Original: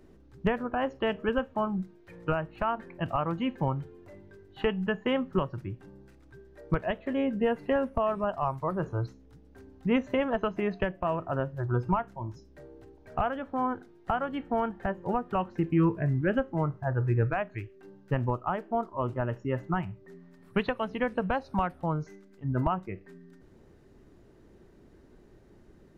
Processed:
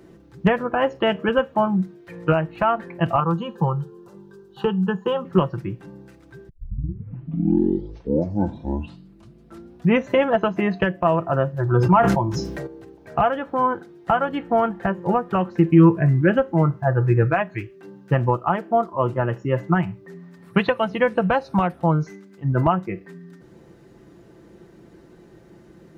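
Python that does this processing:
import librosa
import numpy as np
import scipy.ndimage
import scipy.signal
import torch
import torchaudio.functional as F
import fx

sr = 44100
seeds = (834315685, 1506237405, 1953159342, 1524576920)

y = fx.fixed_phaser(x, sr, hz=420.0, stages=8, at=(3.2, 5.25))
y = fx.sustainer(y, sr, db_per_s=23.0, at=(11.59, 12.67))
y = fx.edit(y, sr, fx.tape_start(start_s=6.49, length_s=3.58), tone=tone)
y = scipy.signal.sosfilt(scipy.signal.butter(2, 76.0, 'highpass', fs=sr, output='sos'), y)
y = y + 0.47 * np.pad(y, (int(5.9 * sr / 1000.0), 0))[:len(y)]
y = F.gain(torch.from_numpy(y), 8.5).numpy()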